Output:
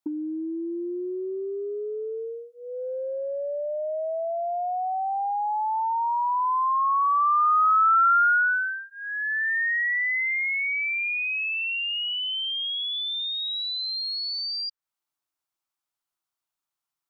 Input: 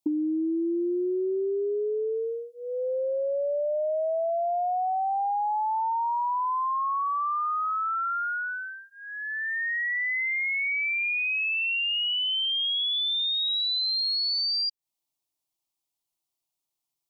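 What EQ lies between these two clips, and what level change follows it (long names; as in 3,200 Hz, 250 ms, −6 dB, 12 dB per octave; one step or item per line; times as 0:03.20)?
parametric band 1,400 Hz +14.5 dB 1 octave
−4.5 dB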